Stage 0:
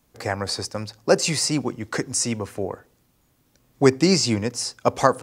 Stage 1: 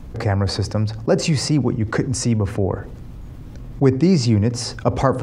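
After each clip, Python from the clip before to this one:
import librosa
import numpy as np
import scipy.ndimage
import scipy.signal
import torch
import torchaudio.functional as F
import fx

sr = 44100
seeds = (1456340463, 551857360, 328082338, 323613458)

y = fx.riaa(x, sr, side='playback')
y = fx.env_flatten(y, sr, amount_pct=50)
y = y * librosa.db_to_amplitude(-5.5)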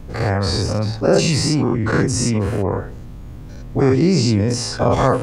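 y = fx.spec_dilate(x, sr, span_ms=120)
y = y * librosa.db_to_amplitude(-3.0)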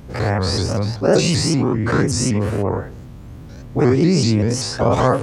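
y = scipy.signal.sosfilt(scipy.signal.butter(2, 55.0, 'highpass', fs=sr, output='sos'), x)
y = fx.vibrato_shape(y, sr, shape='saw_up', rate_hz=5.2, depth_cents=160.0)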